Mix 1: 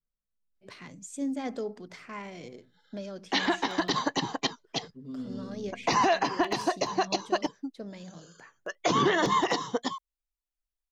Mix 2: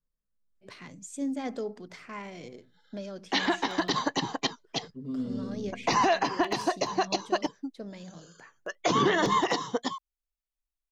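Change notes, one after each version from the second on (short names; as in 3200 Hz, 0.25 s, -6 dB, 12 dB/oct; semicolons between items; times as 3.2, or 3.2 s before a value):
second voice +5.0 dB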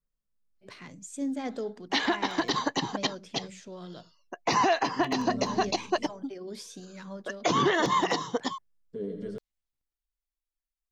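background: entry -1.40 s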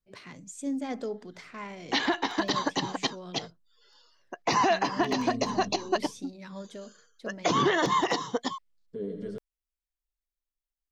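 first voice: entry -0.55 s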